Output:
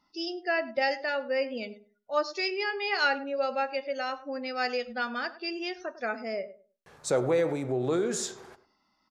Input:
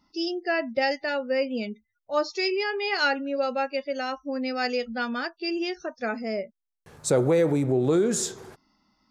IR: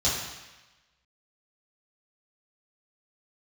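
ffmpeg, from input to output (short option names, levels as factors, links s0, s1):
-filter_complex "[0:a]lowpass=f=3900:p=1,lowshelf=f=400:g=-11.5,asplit=2[s0][s1];[s1]adelay=102,lowpass=f=1100:p=1,volume=0.2,asplit=2[s2][s3];[s3]adelay=102,lowpass=f=1100:p=1,volume=0.23,asplit=2[s4][s5];[s5]adelay=102,lowpass=f=1100:p=1,volume=0.23[s6];[s0][s2][s4][s6]amix=inputs=4:normalize=0,asplit=2[s7][s8];[1:a]atrim=start_sample=2205,afade=t=out:st=0.16:d=0.01,atrim=end_sample=7497[s9];[s8][s9]afir=irnorm=-1:irlink=0,volume=0.0447[s10];[s7][s10]amix=inputs=2:normalize=0"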